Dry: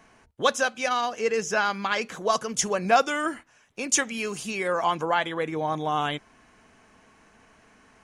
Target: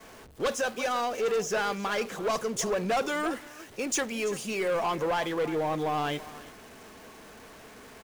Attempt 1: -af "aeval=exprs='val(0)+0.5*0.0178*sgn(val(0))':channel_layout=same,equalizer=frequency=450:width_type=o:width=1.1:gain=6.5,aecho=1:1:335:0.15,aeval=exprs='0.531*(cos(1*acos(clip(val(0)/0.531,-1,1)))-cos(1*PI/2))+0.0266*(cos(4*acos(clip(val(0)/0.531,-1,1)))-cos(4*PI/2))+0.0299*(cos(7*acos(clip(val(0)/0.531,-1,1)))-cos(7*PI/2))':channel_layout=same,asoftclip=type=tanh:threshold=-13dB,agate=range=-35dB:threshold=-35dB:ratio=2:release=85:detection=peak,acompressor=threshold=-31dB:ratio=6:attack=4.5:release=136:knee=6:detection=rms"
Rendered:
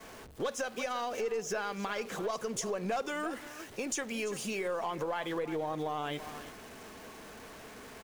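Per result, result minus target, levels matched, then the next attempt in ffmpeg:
downward compressor: peak gain reduction +14.5 dB; soft clipping: distortion −9 dB
-af "aeval=exprs='val(0)+0.5*0.0178*sgn(val(0))':channel_layout=same,equalizer=frequency=450:width_type=o:width=1.1:gain=6.5,aecho=1:1:335:0.15,aeval=exprs='0.531*(cos(1*acos(clip(val(0)/0.531,-1,1)))-cos(1*PI/2))+0.0266*(cos(4*acos(clip(val(0)/0.531,-1,1)))-cos(4*PI/2))+0.0299*(cos(7*acos(clip(val(0)/0.531,-1,1)))-cos(7*PI/2))':channel_layout=same,asoftclip=type=tanh:threshold=-13dB,agate=range=-35dB:threshold=-35dB:ratio=2:release=85:detection=peak"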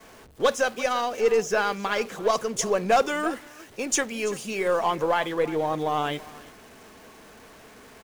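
soft clipping: distortion −9 dB
-af "aeval=exprs='val(0)+0.5*0.0178*sgn(val(0))':channel_layout=same,equalizer=frequency=450:width_type=o:width=1.1:gain=6.5,aecho=1:1:335:0.15,aeval=exprs='0.531*(cos(1*acos(clip(val(0)/0.531,-1,1)))-cos(1*PI/2))+0.0266*(cos(4*acos(clip(val(0)/0.531,-1,1)))-cos(4*PI/2))+0.0299*(cos(7*acos(clip(val(0)/0.531,-1,1)))-cos(7*PI/2))':channel_layout=same,asoftclip=type=tanh:threshold=-23.5dB,agate=range=-35dB:threshold=-35dB:ratio=2:release=85:detection=peak"

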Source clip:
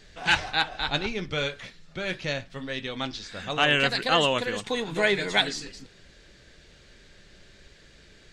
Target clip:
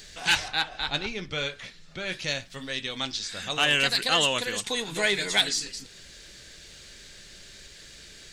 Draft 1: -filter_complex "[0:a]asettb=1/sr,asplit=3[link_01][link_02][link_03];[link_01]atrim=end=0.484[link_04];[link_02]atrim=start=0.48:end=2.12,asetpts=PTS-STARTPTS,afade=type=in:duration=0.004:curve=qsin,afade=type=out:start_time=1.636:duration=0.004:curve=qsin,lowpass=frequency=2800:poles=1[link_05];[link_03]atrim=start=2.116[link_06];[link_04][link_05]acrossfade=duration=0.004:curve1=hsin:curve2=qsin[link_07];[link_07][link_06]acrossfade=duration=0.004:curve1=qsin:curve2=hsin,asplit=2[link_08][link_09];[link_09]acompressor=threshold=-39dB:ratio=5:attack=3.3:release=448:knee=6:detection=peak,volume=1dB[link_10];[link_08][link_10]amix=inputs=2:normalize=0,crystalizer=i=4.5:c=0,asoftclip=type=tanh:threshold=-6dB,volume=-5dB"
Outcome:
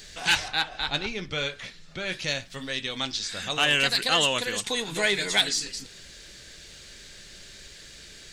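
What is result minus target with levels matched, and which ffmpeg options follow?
downward compressor: peak gain reduction −7 dB
-filter_complex "[0:a]asettb=1/sr,asplit=3[link_01][link_02][link_03];[link_01]atrim=end=0.484[link_04];[link_02]atrim=start=0.48:end=2.12,asetpts=PTS-STARTPTS,afade=type=in:duration=0.004:curve=qsin,afade=type=out:start_time=1.636:duration=0.004:curve=qsin,lowpass=frequency=2800:poles=1[link_05];[link_03]atrim=start=2.116[link_06];[link_04][link_05]acrossfade=duration=0.004:curve1=hsin:curve2=qsin[link_07];[link_07][link_06]acrossfade=duration=0.004:curve1=qsin:curve2=hsin,asplit=2[link_08][link_09];[link_09]acompressor=threshold=-48dB:ratio=5:attack=3.3:release=448:knee=6:detection=peak,volume=1dB[link_10];[link_08][link_10]amix=inputs=2:normalize=0,crystalizer=i=4.5:c=0,asoftclip=type=tanh:threshold=-6dB,volume=-5dB"

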